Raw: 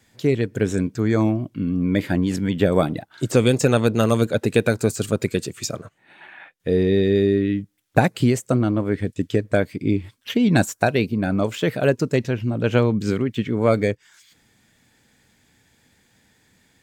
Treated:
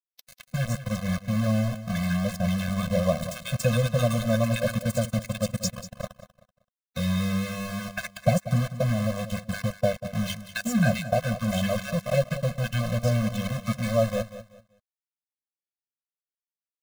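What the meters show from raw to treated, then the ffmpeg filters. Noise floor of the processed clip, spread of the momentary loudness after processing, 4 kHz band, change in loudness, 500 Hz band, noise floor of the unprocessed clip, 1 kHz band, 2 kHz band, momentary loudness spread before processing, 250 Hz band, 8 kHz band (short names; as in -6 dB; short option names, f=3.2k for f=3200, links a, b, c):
under -85 dBFS, 8 LU, -3.0 dB, -6.0 dB, -7.5 dB, -63 dBFS, -5.5 dB, -5.0 dB, 7 LU, -7.0 dB, -3.0 dB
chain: -filter_complex "[0:a]bandreject=f=50:t=h:w=6,bandreject=f=100:t=h:w=6,bandreject=f=150:t=h:w=6,bandreject=f=200:t=h:w=6,bandreject=f=250:t=h:w=6,asplit=2[a][b];[b]acompressor=threshold=-26dB:ratio=16,volume=-1.5dB[c];[a][c]amix=inputs=2:normalize=0,acrossover=split=1100[d][e];[d]adelay=300[f];[f][e]amix=inputs=2:normalize=0,aeval=exprs='val(0)*gte(abs(val(0)),0.0841)':c=same,asplit=2[g][h];[h]aecho=0:1:191|382|573:0.211|0.0571|0.0154[i];[g][i]amix=inputs=2:normalize=0,afftfilt=real='re*eq(mod(floor(b*sr/1024/250),2),0)':imag='im*eq(mod(floor(b*sr/1024/250),2),0)':win_size=1024:overlap=0.75,volume=-3.5dB"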